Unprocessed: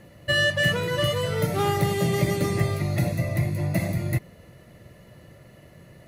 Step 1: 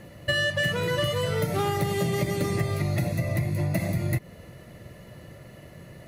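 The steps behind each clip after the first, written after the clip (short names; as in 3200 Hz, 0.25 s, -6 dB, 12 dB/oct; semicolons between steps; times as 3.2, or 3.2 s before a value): compressor, threshold -26 dBFS, peak gain reduction 9.5 dB; gain +3.5 dB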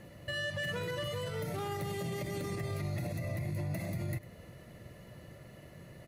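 limiter -23 dBFS, peak gain reduction 9.5 dB; echo 0.101 s -18 dB; gain -6 dB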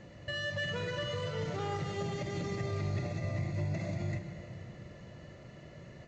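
on a send at -6 dB: reverb RT60 3.3 s, pre-delay 43 ms; on the sum: µ-law 128 kbps 16000 Hz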